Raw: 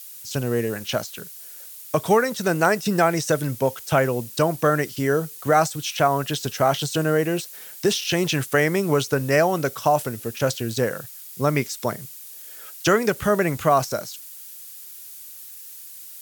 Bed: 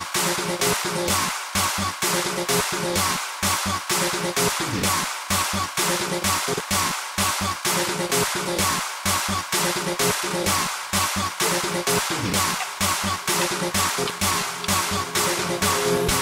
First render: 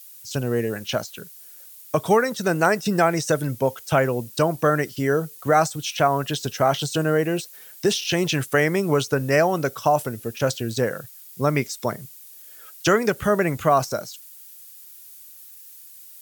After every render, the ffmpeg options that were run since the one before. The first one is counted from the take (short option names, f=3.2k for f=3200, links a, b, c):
-af "afftdn=nr=6:nf=-41"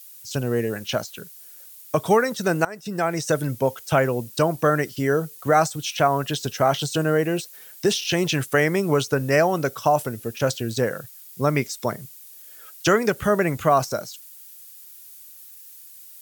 -filter_complex "[0:a]asplit=2[a][b];[a]atrim=end=2.65,asetpts=PTS-STARTPTS,afade=t=out:st=2.646:d=0.004:c=hsin:silence=0.0749894[c];[b]atrim=start=2.65,asetpts=PTS-STARTPTS,afade=t=in:d=0.72:silence=0.0749894[d];[c][d]concat=n=2:v=0:a=1"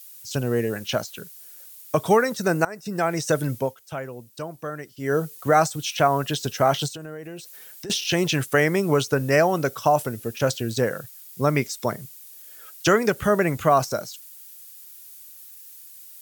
-filter_complex "[0:a]asettb=1/sr,asplit=3[a][b][c];[a]atrim=end=2.354[d];[b]atrim=start=2.35:end=2.96,asetpts=PTS-STARTPTS,afade=t=in:d=0.004:c=qsin,afade=t=out:st=0.606:d=0.004:c=qsin,equalizer=f=3.2k:t=o:w=0.33:g=-10[e];[c]atrim=start=2.956[f];[d][e]acrossfade=d=0.004:c1=hsin:c2=qsin[g];[g][f]acrossfade=d=0.004:c1=qsin:c2=hsin,asettb=1/sr,asplit=3[h][i][j];[h]atrim=end=6.884[k];[i]atrim=start=6.88:end=7.9,asetpts=PTS-STARTPTS,afade=t=in:d=0.004:c=qsin,afade=t=out:st=1.016:d=0.004:c=qsin,acompressor=threshold=-36dB:ratio=4:attack=3.2:release=140:knee=1:detection=peak[l];[j]atrim=start=7.896[m];[k][l]acrossfade=d=0.004:c1=hsin:c2=qsin[n];[n][m]acrossfade=d=0.004:c1=qsin:c2=hsin,asplit=3[o][p][q];[o]atrim=end=3.75,asetpts=PTS-STARTPTS,afade=t=out:st=3.56:d=0.19:silence=0.223872[r];[p]atrim=start=3.75:end=4.98,asetpts=PTS-STARTPTS,volume=-13dB[s];[q]atrim=start=4.98,asetpts=PTS-STARTPTS,afade=t=in:d=0.19:silence=0.223872[t];[r][s][t]concat=n=3:v=0:a=1"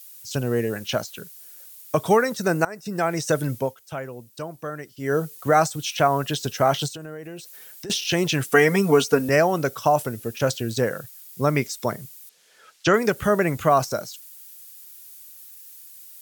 -filter_complex "[0:a]asettb=1/sr,asplit=3[a][b][c];[a]atrim=end=8.444[d];[b]atrim=start=8.44:end=9.29,asetpts=PTS-STARTPTS,afade=t=in:d=0.004:c=qsin,afade=t=out:st=0.846:d=0.004:c=qsin,aecho=1:1:4.3:1,atrim=end_sample=37485[e];[c]atrim=start=9.286[f];[d][e]acrossfade=d=0.004:c1=hsin:c2=qsin[g];[g][f]acrossfade=d=0.004:c1=qsin:c2=hsin,asettb=1/sr,asplit=3[h][i][j];[h]atrim=end=12.294[k];[i]atrim=start=12.29:end=12.94,asetpts=PTS-STARTPTS,afade=t=in:d=0.004:c=qsin,afade=t=out:st=0.646:d=0.004:c=qsin,lowpass=5.1k[l];[j]atrim=start=12.936[m];[k][l]acrossfade=d=0.004:c1=hsin:c2=qsin[n];[n][m]acrossfade=d=0.004:c1=qsin:c2=hsin"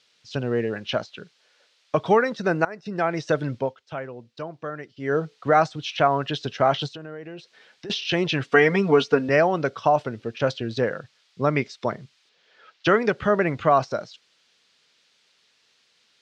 -af "lowpass=f=4.3k:w=0.5412,lowpass=f=4.3k:w=1.3066,lowshelf=f=120:g=-6.5"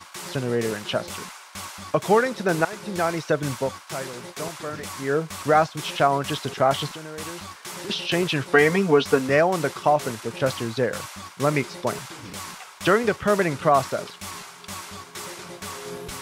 -filter_complex "[1:a]volume=-14dB[a];[0:a][a]amix=inputs=2:normalize=0"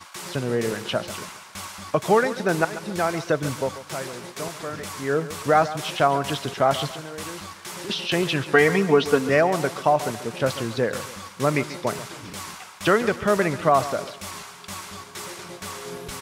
-af "aecho=1:1:139|278|417|556:0.188|0.0735|0.0287|0.0112"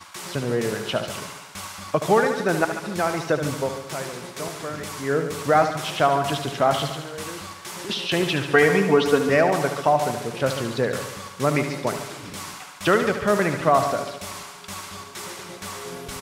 -af "aecho=1:1:73|146|219|292|365|438|511:0.335|0.198|0.117|0.0688|0.0406|0.0239|0.0141"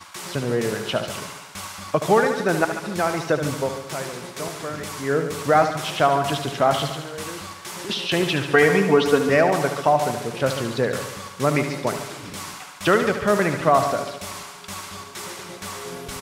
-af "volume=1dB,alimiter=limit=-3dB:level=0:latency=1"